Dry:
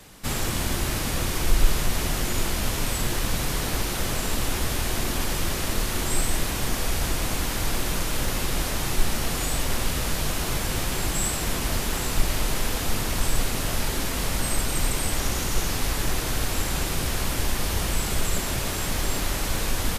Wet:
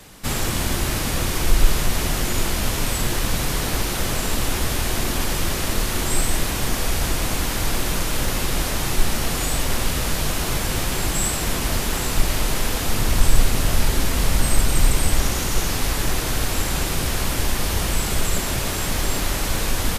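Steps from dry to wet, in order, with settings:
0:12.98–0:15.26: low-shelf EQ 120 Hz +6.5 dB
level +3.5 dB

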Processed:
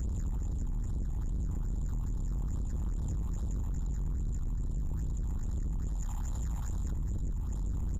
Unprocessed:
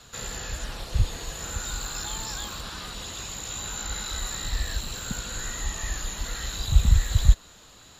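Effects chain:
compressor on every frequency bin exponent 0.2
drawn EQ curve 100 Hz 0 dB, 150 Hz −14 dB, 1,000 Hz −3 dB, 1,500 Hz −14 dB, 4,300 Hz −28 dB, 6,600 Hz −8 dB, 12,000 Hz −11 dB
all-pass phaser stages 6, 2.4 Hz, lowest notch 370–2,100 Hz
0:04.10–0:04.55: comb filter 2.8 ms, depth 41%
0:05.87–0:06.91: low-shelf EQ 240 Hz −10.5 dB
single-tap delay 87 ms −7 dB
downward compressor 6 to 1, threshold −18 dBFS, peak gain reduction 12.5 dB
soft clipping −27 dBFS, distortion −8 dB
echo with shifted repeats 160 ms, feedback 32%, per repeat +100 Hz, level −17.5 dB
level −3.5 dB

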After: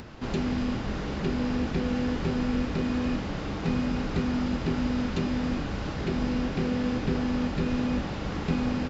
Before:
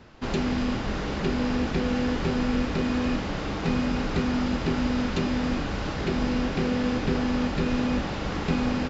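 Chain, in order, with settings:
parametric band 120 Hz +4 dB 2.9 octaves
upward compression, threshold −30 dBFS
level −4.5 dB

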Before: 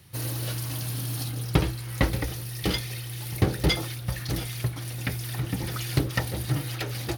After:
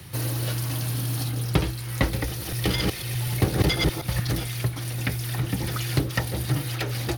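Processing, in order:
0:02.28–0:04.33: delay that plays each chunk backwards 124 ms, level −0.5 dB
multiband upward and downward compressor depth 40%
level +1.5 dB

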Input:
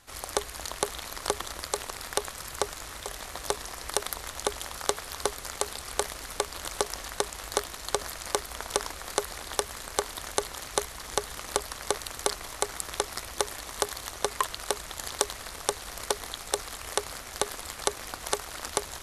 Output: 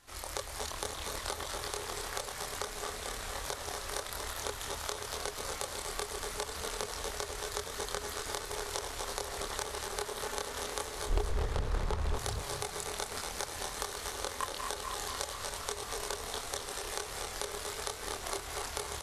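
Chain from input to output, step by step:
feedback delay that plays each chunk backwards 124 ms, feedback 84%, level −10 dB
downward compressor, threshold −29 dBFS, peak gain reduction 10 dB
0:11.06–0:12.16: RIAA equalisation playback
multi-voice chorus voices 4, 0.13 Hz, delay 26 ms, depth 2.8 ms
echo with shifted repeats 236 ms, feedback 35%, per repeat +34 Hz, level −7 dB
highs frequency-modulated by the lows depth 0.76 ms

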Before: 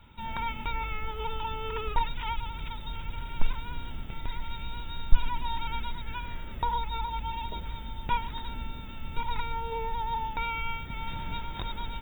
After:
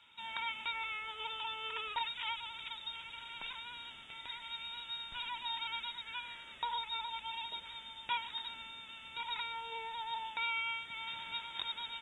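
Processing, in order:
low-pass filter 7,500 Hz 24 dB per octave
first difference
level +9 dB

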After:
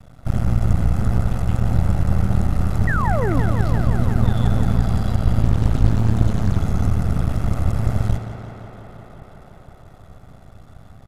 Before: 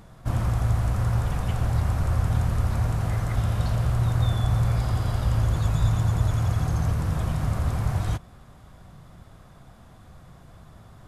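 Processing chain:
high-pass filter 48 Hz 6 dB per octave
low-shelf EQ 110 Hz +10 dB
comb filter 1.5 ms, depth 91%
half-wave rectification
0:02.87–0:03.40: sound drawn into the spectrogram fall 240–2,000 Hz −24 dBFS
on a send: tape delay 173 ms, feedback 88%, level −8 dB, low-pass 5,500 Hz
0:05.42–0:06.59: on the sum: highs frequency-modulated by the lows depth 0.94 ms

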